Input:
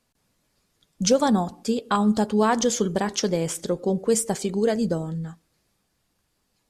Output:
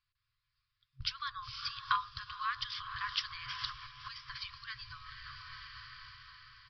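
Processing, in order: gate with hold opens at -37 dBFS; echo that smears into a reverb 479 ms, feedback 51%, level -12 dB; compression 6:1, threshold -36 dBFS, peak gain reduction 20.5 dB; FFT band-reject 130–1000 Hz; resampled via 11.025 kHz; trim +10 dB

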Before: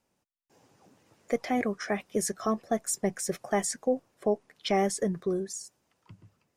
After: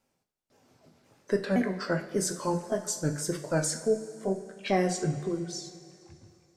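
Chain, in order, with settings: sawtooth pitch modulation -5 st, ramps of 520 ms; two-slope reverb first 0.39 s, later 2.8 s, from -15 dB, DRR 4 dB

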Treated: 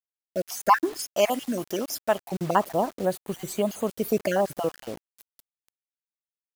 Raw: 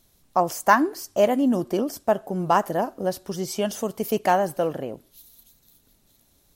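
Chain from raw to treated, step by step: random holes in the spectrogram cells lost 38%; 0.99–2.28 s: tilt shelf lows -7.5 dB, about 940 Hz; bit crusher 7-bit; 3.05–3.87 s: peaking EQ 5.4 kHz -14 dB 0.32 oct

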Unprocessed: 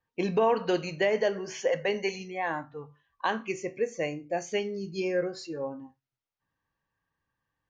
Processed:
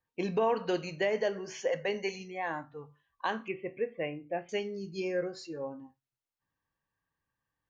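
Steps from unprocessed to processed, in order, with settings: 3.48–4.49 s: steep low-pass 3.3 kHz 72 dB/octave; trim -4 dB

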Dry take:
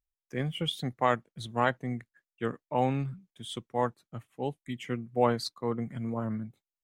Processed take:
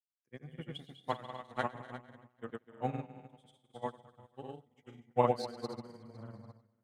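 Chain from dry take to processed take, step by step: multi-head delay 121 ms, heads first and second, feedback 60%, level -8.5 dB; granulator, pitch spread up and down by 0 st; upward expansion 2.5:1, over -43 dBFS

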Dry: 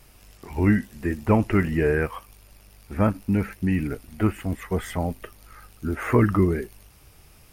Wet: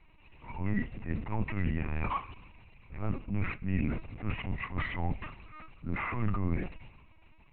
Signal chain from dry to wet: waveshaping leveller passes 2; reverse; compression 6:1, threshold -23 dBFS, peak gain reduction 11.5 dB; reverse; transient shaper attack -9 dB, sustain +5 dB; static phaser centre 2.3 kHz, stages 8; on a send at -16 dB: reverberation RT60 0.75 s, pre-delay 36 ms; on the sum: LPC vocoder at 8 kHz pitch kept; trim -2 dB

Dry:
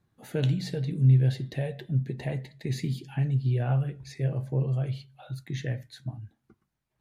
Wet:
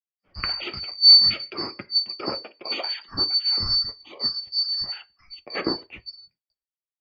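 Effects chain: four frequency bands reordered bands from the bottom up 2341; gate with hold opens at -51 dBFS; level rider gain up to 10 dB; low-pass 3.3 kHz 24 dB/octave; three bands expanded up and down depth 100%; trim +2.5 dB

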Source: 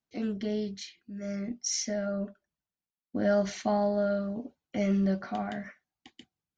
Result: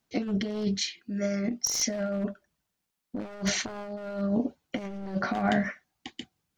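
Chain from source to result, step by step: one-sided wavefolder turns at -27 dBFS; compressor with a negative ratio -35 dBFS, ratio -0.5; 0.78–1.77 s: bass shelf 190 Hz -8 dB; trim +7 dB

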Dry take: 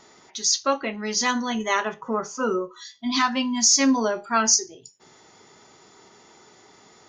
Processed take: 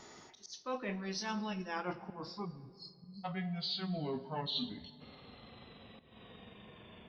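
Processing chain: pitch bend over the whole clip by -12 st starting unshifted; bass shelf 140 Hz +6.5 dB; reverse; compression 10:1, threshold -33 dBFS, peak gain reduction 19 dB; reverse; slow attack 225 ms; spectral selection erased 2.45–3.25 s, 260–4000 Hz; on a send: reverberation RT60 2.4 s, pre-delay 4 ms, DRR 13.5 dB; on the sum: trim -2.5 dB

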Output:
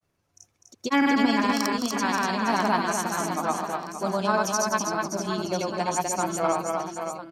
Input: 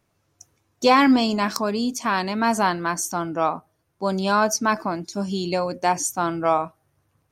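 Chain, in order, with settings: granulator, pitch spread up and down by 0 st; reverse bouncing-ball echo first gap 250 ms, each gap 1.3×, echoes 5; trim -3.5 dB

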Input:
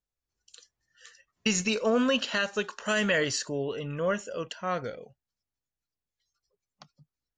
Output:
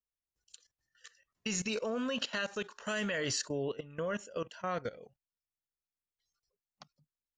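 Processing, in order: level held to a coarse grid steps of 17 dB

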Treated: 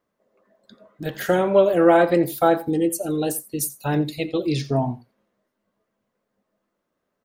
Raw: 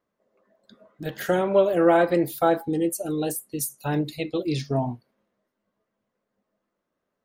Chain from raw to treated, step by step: delay 87 ms -18.5 dB; trim +3 dB

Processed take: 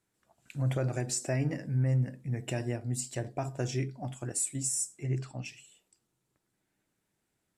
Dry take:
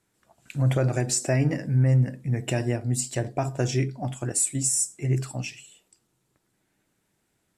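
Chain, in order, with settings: 5.02–5.44 s: low-pass 8.6 kHz -> 3.6 kHz 12 dB/octave; trim -7.5 dB

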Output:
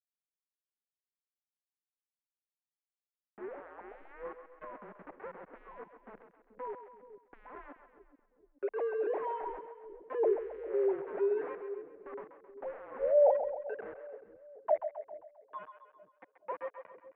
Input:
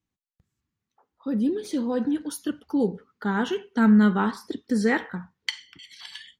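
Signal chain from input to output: formants replaced by sine waves; reverb removal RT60 1.1 s; elliptic band-stop 370–1400 Hz, stop band 40 dB; tilt shelf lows -4.5 dB, about 1.2 kHz; in parallel at 0 dB: peak limiter -24.5 dBFS, peak gain reduction 11.5 dB; on the sum: wide varispeed 0.373×; small samples zeroed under -37.5 dBFS; mistuned SSB -130 Hz 380–2100 Hz; on a send: two-band feedback delay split 440 Hz, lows 429 ms, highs 133 ms, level -9 dB

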